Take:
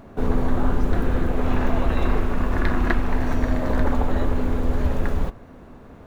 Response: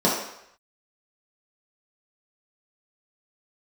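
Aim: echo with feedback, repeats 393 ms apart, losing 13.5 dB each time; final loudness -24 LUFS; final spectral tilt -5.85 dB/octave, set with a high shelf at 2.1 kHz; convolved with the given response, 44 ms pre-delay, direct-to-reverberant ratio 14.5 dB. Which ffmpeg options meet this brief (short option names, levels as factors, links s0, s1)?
-filter_complex "[0:a]highshelf=f=2100:g=8.5,aecho=1:1:393|786:0.211|0.0444,asplit=2[s0][s1];[1:a]atrim=start_sample=2205,adelay=44[s2];[s1][s2]afir=irnorm=-1:irlink=0,volume=0.0251[s3];[s0][s3]amix=inputs=2:normalize=0,volume=0.944"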